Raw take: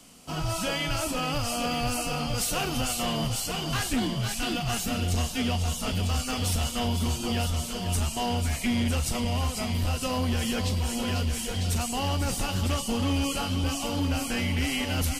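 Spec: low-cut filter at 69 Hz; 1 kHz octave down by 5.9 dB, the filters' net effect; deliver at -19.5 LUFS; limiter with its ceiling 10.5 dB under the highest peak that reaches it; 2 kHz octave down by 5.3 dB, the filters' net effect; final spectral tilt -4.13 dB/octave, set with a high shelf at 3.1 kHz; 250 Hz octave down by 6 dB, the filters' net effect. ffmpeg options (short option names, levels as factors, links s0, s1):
-af "highpass=69,equalizer=f=250:t=o:g=-6.5,equalizer=f=1000:t=o:g=-7,equalizer=f=2000:t=o:g=-3,highshelf=f=3100:g=-5.5,volume=7.94,alimiter=limit=0.251:level=0:latency=1"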